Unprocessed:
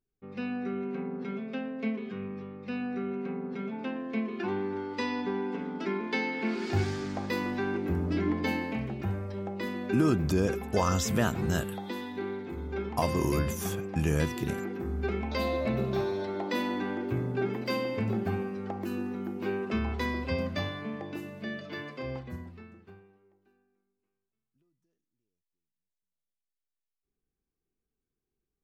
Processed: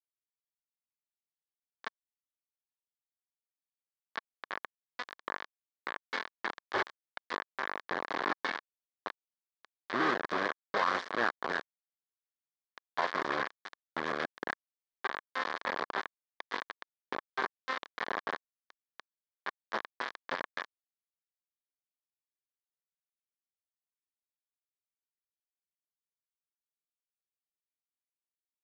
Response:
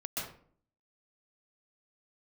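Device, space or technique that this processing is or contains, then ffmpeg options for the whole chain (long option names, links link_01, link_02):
hand-held game console: -af "acrusher=bits=3:mix=0:aa=0.000001,highpass=400,equalizer=frequency=1100:width_type=q:width=4:gain=7,equalizer=frequency=1700:width_type=q:width=4:gain=8,equalizer=frequency=2700:width_type=q:width=4:gain=-9,lowpass=frequency=4100:width=0.5412,lowpass=frequency=4100:width=1.3066,volume=-4.5dB"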